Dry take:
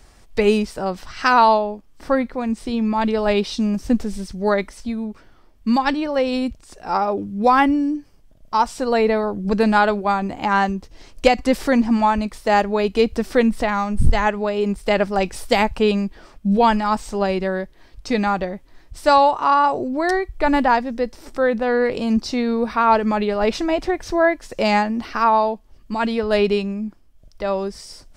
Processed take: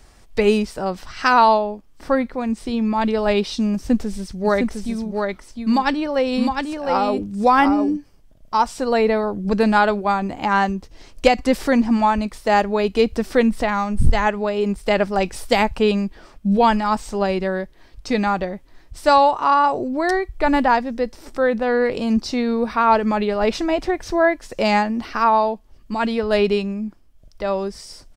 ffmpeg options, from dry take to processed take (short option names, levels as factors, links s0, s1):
-filter_complex "[0:a]asplit=3[s0][s1][s2];[s0]afade=t=out:st=4.44:d=0.02[s3];[s1]aecho=1:1:708:0.596,afade=t=in:st=4.44:d=0.02,afade=t=out:st=7.96:d=0.02[s4];[s2]afade=t=in:st=7.96:d=0.02[s5];[s3][s4][s5]amix=inputs=3:normalize=0"